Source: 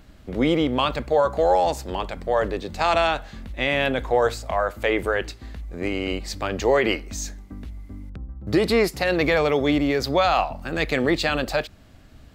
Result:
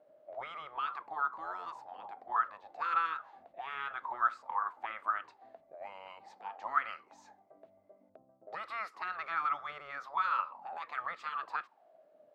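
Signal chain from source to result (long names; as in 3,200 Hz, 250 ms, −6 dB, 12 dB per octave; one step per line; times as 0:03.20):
gate on every frequency bin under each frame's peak −10 dB weak
envelope filter 580–1,300 Hz, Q 13, up, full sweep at −25 dBFS
level +7 dB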